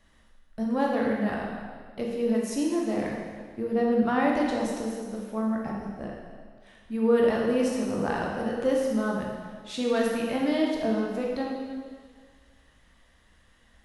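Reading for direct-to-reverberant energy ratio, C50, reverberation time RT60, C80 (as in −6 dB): −2.5 dB, 0.5 dB, 1.7 s, 2.5 dB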